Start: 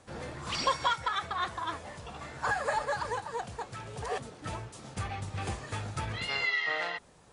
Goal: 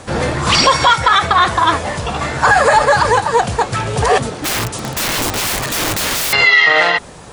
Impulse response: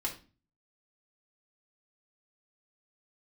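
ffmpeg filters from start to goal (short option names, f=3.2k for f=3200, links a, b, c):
-filter_complex "[0:a]asettb=1/sr,asplit=3[a][b][c];[a]atrim=end=4.404[d];[b]atrim=start=4.4:end=6.33,asetpts=PTS-STARTPTS,afade=t=in:d=0.004:c=qsin,afade=t=out:st=1.926:d=0.004:c=qsin,aeval=exprs='(mod(66.8*val(0)+1,2)-1)/66.8':c=same[e];[c]atrim=start=6.326[f];[d][e]acrossfade=d=0.004:c1=hsin:c2=qsin[g];[g][f]acrossfade=d=0.004:c1=qsin:c2=hsin,alimiter=level_in=24dB:limit=-1dB:release=50:level=0:latency=1,volume=-1dB"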